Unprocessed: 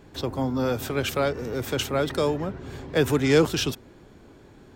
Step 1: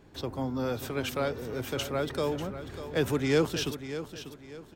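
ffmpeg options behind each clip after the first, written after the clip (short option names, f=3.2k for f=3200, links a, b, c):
-af "bandreject=f=7.2k:w=25,aecho=1:1:593|1186|1779|2372:0.266|0.0905|0.0308|0.0105,volume=-6dB"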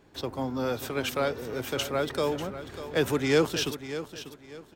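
-filter_complex "[0:a]lowshelf=f=230:g=-6.5,asplit=2[a][b];[b]aeval=exprs='sgn(val(0))*max(abs(val(0))-0.00422,0)':c=same,volume=-5dB[c];[a][c]amix=inputs=2:normalize=0"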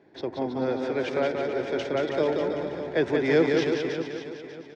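-filter_complex "[0:a]highpass=150,equalizer=f=360:t=q:w=4:g=6,equalizer=f=650:t=q:w=4:g=4,equalizer=f=1.2k:t=q:w=4:g=-9,equalizer=f=1.9k:t=q:w=4:g=4,equalizer=f=2.9k:t=q:w=4:g=-9,equalizer=f=4.1k:t=q:w=4:g=-5,lowpass=f=4.5k:w=0.5412,lowpass=f=4.5k:w=1.3066,asplit=2[a][b];[b]aecho=0:1:180|324|439.2|531.4|605.1:0.631|0.398|0.251|0.158|0.1[c];[a][c]amix=inputs=2:normalize=0"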